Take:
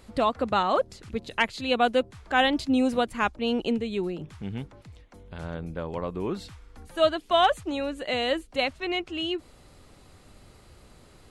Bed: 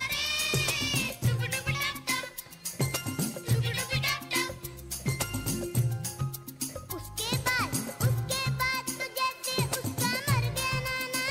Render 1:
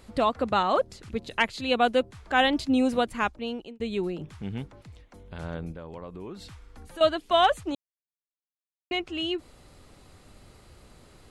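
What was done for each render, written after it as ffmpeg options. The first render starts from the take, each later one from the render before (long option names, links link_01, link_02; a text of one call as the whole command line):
ffmpeg -i in.wav -filter_complex "[0:a]asettb=1/sr,asplit=3[link_01][link_02][link_03];[link_01]atrim=end=5.724[link_04];[link_02]atrim=start=5.72:end=7.01,asetpts=PTS-STARTPTS,afade=type=in:duration=0.004:curve=qsin,afade=type=out:start_time=1.286:duration=0.004:curve=qsin,acompressor=threshold=-40dB:ratio=2.5:attack=3.2:release=140:knee=1:detection=peak[link_05];[link_03]atrim=start=7.006[link_06];[link_04][link_05]acrossfade=duration=0.004:curve1=hsin:curve2=qsin[link_07];[link_07][link_06]acrossfade=duration=0.004:curve1=qsin:curve2=hsin,asplit=4[link_08][link_09][link_10][link_11];[link_08]atrim=end=3.8,asetpts=PTS-STARTPTS,afade=type=out:start_time=3.15:duration=0.65[link_12];[link_09]atrim=start=3.8:end=7.75,asetpts=PTS-STARTPTS,afade=type=in:duration=0.004:curve=hsin,afade=type=out:start_time=3.946:duration=0.004:curve=hsin[link_13];[link_10]atrim=start=7.75:end=8.91,asetpts=PTS-STARTPTS,volume=0[link_14];[link_11]atrim=start=8.91,asetpts=PTS-STARTPTS,afade=type=in:duration=0.004:curve=hsin[link_15];[link_12][link_13][link_14][link_15]concat=n=4:v=0:a=1" out.wav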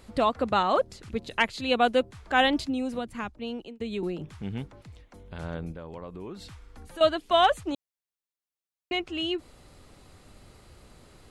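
ffmpeg -i in.wav -filter_complex "[0:a]asettb=1/sr,asplit=3[link_01][link_02][link_03];[link_01]atrim=end=2.644[link_04];[link_02]atrim=start=2.64:end=4.03,asetpts=PTS-STARTPTS,afade=type=in:duration=0.004:curve=qsin,afade=type=out:start_time=1.386:duration=0.004:curve=qsin,acrossover=split=92|260[link_05][link_06][link_07];[link_05]acompressor=threshold=-51dB:ratio=4[link_08];[link_06]acompressor=threshold=-35dB:ratio=4[link_09];[link_07]acompressor=threshold=-33dB:ratio=4[link_10];[link_08][link_09][link_10]amix=inputs=3:normalize=0[link_11];[link_03]atrim=start=4.026[link_12];[link_04][link_11]acrossfade=duration=0.004:curve1=hsin:curve2=qsin[link_13];[link_13][link_12]acrossfade=duration=0.004:curve1=qsin:curve2=hsin" out.wav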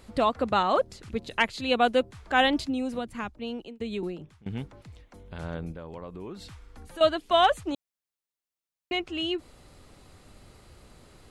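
ffmpeg -i in.wav -filter_complex "[0:a]asplit=2[link_01][link_02];[link_01]atrim=end=4.46,asetpts=PTS-STARTPTS,afade=type=out:start_time=3.95:duration=0.51:silence=0.0668344[link_03];[link_02]atrim=start=4.46,asetpts=PTS-STARTPTS,afade=type=in:duration=0.004:curve=hsin:silence=0.0668344[link_04];[link_03][link_04]concat=n=2:v=0:a=1" out.wav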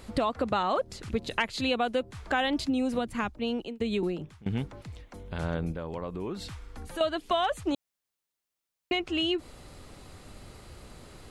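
ffmpeg -i in.wav -filter_complex "[0:a]asplit=2[link_01][link_02];[link_02]alimiter=limit=-19.5dB:level=0:latency=1:release=24,volume=-3dB[link_03];[link_01][link_03]amix=inputs=2:normalize=0,acompressor=threshold=-24dB:ratio=6" out.wav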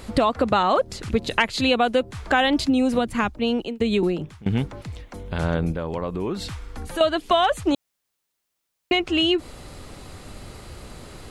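ffmpeg -i in.wav -af "volume=8dB" out.wav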